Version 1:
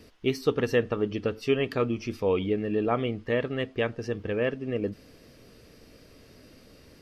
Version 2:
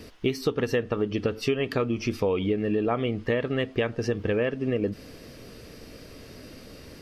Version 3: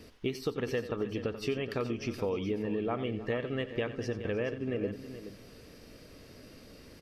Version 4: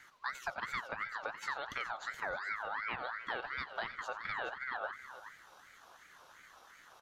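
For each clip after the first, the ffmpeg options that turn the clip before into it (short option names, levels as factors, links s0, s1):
-af "acompressor=threshold=0.0316:ratio=6,volume=2.51"
-af "aecho=1:1:90|310|424:0.2|0.119|0.251,volume=0.422"
-af "aeval=exprs='val(0)*sin(2*PI*1400*n/s+1400*0.3/2.8*sin(2*PI*2.8*n/s))':c=same,volume=0.631"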